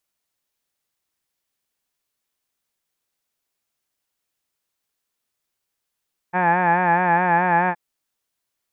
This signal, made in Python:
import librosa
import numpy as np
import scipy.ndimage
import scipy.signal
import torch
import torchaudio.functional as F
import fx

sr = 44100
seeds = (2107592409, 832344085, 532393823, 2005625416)

y = fx.formant_vowel(sr, seeds[0], length_s=1.42, hz=176.0, glide_st=0.0, vibrato_hz=4.7, vibrato_st=0.7, f1_hz=830.0, f2_hz=1700.0, f3_hz=2400.0)